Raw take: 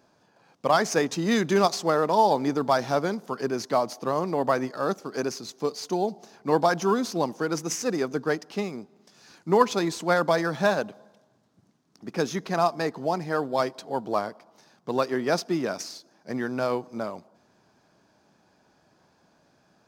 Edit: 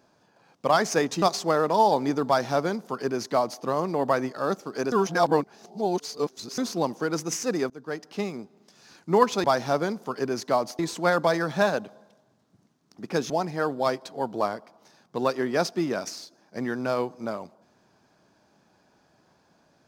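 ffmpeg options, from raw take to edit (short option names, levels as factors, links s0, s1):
-filter_complex "[0:a]asplit=8[s0][s1][s2][s3][s4][s5][s6][s7];[s0]atrim=end=1.222[s8];[s1]atrim=start=1.608:end=5.312[s9];[s2]atrim=start=5.308:end=6.972,asetpts=PTS-STARTPTS,areverse[s10];[s3]atrim=start=6.968:end=8.09,asetpts=PTS-STARTPTS,afade=t=out:st=1.118:d=0.004:c=hsin:silence=0.0749894[s11];[s4]atrim=start=8.09:end=9.832,asetpts=PTS-STARTPTS,afade=t=in:d=0.54:silence=0.0749894[s12];[s5]atrim=start=2.658:end=4.012[s13];[s6]atrim=start=9.828:end=12.342[s14];[s7]atrim=start=13.028[s15];[s8][s9]acrossfade=d=0.004:c1=hsin:c2=hsin[s16];[s16][s10]acrossfade=d=0.004:c1=hsin:c2=hsin[s17];[s11][s12]concat=n=2:v=0:a=1[s18];[s17][s18]acrossfade=d=0.004:c1=hsin:c2=hsin[s19];[s19][s13]acrossfade=d=0.004:c1=hsin:c2=hsin[s20];[s20][s14]acrossfade=d=0.004:c1=hsin:c2=hsin[s21];[s21][s15]acrossfade=d=0.004:c1=hsin:c2=hsin"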